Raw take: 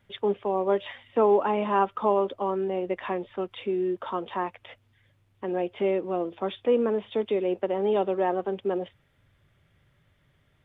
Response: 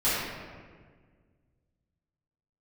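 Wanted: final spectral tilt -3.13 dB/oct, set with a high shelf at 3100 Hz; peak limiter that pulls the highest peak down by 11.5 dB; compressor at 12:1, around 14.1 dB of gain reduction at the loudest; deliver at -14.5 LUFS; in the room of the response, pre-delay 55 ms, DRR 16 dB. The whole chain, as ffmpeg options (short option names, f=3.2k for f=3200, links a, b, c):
-filter_complex "[0:a]highshelf=f=3.1k:g=5,acompressor=threshold=-31dB:ratio=12,alimiter=level_in=8.5dB:limit=-24dB:level=0:latency=1,volume=-8.5dB,asplit=2[a][b];[1:a]atrim=start_sample=2205,adelay=55[c];[b][c]afir=irnorm=-1:irlink=0,volume=-29.5dB[d];[a][d]amix=inputs=2:normalize=0,volume=27dB"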